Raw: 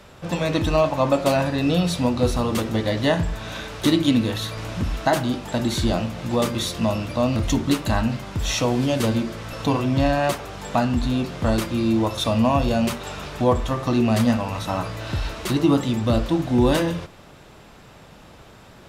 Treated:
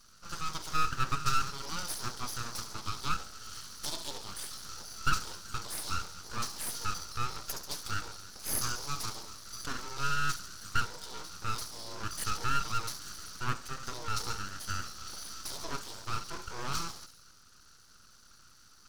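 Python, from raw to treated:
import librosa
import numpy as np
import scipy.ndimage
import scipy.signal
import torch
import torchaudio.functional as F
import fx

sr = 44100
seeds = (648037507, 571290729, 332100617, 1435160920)

p1 = fx.double_bandpass(x, sr, hz=1900.0, octaves=2.9)
p2 = p1 + fx.echo_wet_highpass(p1, sr, ms=69, feedback_pct=62, hz=4000.0, wet_db=-7, dry=0)
p3 = np.abs(p2)
p4 = fx.high_shelf(p3, sr, hz=2500.0, db=8.5)
y = p4 * librosa.db_to_amplitude(-1.0)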